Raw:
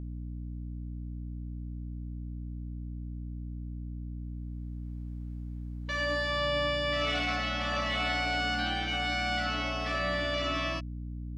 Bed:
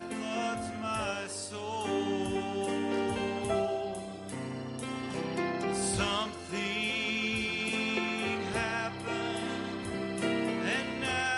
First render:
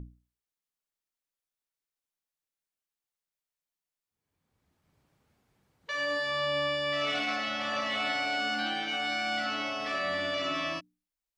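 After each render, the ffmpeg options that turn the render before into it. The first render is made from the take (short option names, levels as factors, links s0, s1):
-af "bandreject=f=60:t=h:w=6,bandreject=f=120:t=h:w=6,bandreject=f=180:t=h:w=6,bandreject=f=240:t=h:w=6,bandreject=f=300:t=h:w=6"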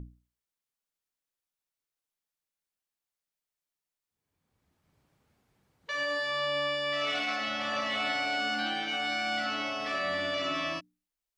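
-filter_complex "[0:a]asettb=1/sr,asplit=3[s0][s1][s2];[s0]atrim=end=6.034[s3];[s1]atrim=start=6.03:end=7.41,asetpts=PTS-STARTPTS,afade=t=in:d=0.004:c=qsin,afade=t=out:st=1.376:d=0.004:c=qsin,lowshelf=f=260:g=-7[s4];[s2]atrim=start=7.406[s5];[s3][s4]acrossfade=d=0.004:c1=hsin:c2=qsin[s6];[s6][s5]acrossfade=d=0.004:c1=qsin:c2=hsin"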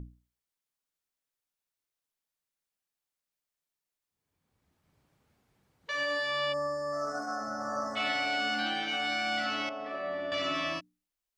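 -filter_complex "[0:a]asplit=3[s0][s1][s2];[s0]afade=t=out:st=6.52:d=0.02[s3];[s1]asuperstop=centerf=2900:order=12:qfactor=0.8,afade=t=in:st=6.52:d=0.02,afade=t=out:st=7.95:d=0.02[s4];[s2]afade=t=in:st=7.95:d=0.02[s5];[s3][s4][s5]amix=inputs=3:normalize=0,asettb=1/sr,asplit=3[s6][s7][s8];[s6]atrim=end=9.694[s9];[s7]atrim=start=9.69:end=10.32,asetpts=PTS-STARTPTS,afade=t=in:d=0.004:c=qsin,afade=t=out:st=0.626:d=0.004:c=qsin,bandpass=f=490:t=q:w=0.81[s10];[s8]atrim=start=10.316[s11];[s9][s10]acrossfade=d=0.004:c1=hsin:c2=qsin[s12];[s12][s11]acrossfade=d=0.004:c1=qsin:c2=hsin"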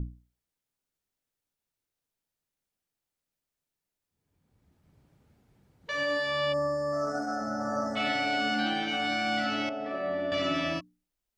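-af "lowshelf=f=490:g=10,bandreject=f=1100:w=19"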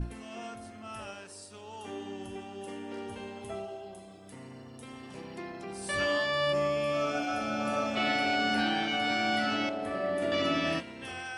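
-filter_complex "[1:a]volume=0.355[s0];[0:a][s0]amix=inputs=2:normalize=0"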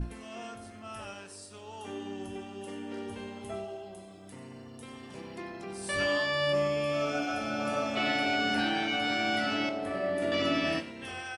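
-filter_complex "[0:a]asplit=2[s0][s1];[s1]adelay=21,volume=0.251[s2];[s0][s2]amix=inputs=2:normalize=0,aecho=1:1:95:0.15"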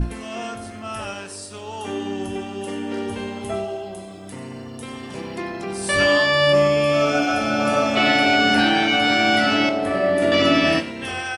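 -af "volume=3.98"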